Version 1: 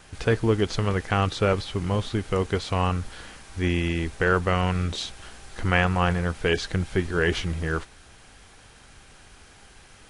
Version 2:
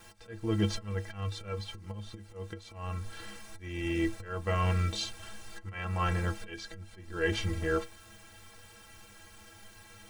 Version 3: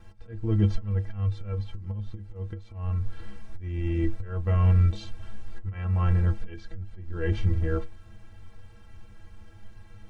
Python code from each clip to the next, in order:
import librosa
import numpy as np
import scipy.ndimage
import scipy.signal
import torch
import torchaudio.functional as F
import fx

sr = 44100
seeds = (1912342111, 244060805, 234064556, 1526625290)

y1 = fx.quant_dither(x, sr, seeds[0], bits=10, dither='triangular')
y1 = fx.auto_swell(y1, sr, attack_ms=493.0)
y1 = fx.stiff_resonator(y1, sr, f0_hz=98.0, decay_s=0.26, stiffness=0.03)
y1 = y1 * 10.0 ** (5.5 / 20.0)
y2 = fx.riaa(y1, sr, side='playback')
y2 = y2 * 10.0 ** (-4.0 / 20.0)